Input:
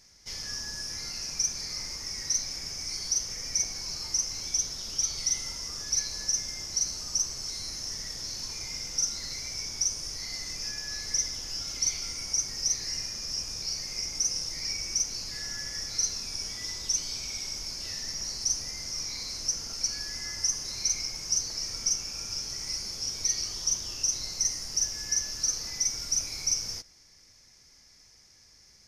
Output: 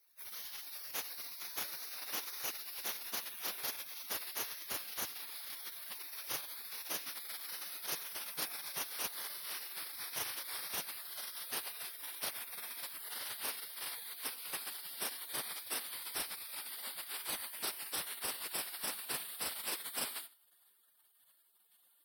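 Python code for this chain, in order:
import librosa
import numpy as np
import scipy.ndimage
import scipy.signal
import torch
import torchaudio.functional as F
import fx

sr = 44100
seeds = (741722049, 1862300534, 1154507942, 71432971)

p1 = fx.speed_glide(x, sr, from_pct=147, to_pct=115)
p2 = fx.spec_gate(p1, sr, threshold_db=-30, keep='weak')
p3 = fx.quant_float(p2, sr, bits=4)
p4 = p3 + fx.echo_single(p3, sr, ms=92, db=-21.0, dry=0)
y = F.gain(torch.from_numpy(p4), 12.0).numpy()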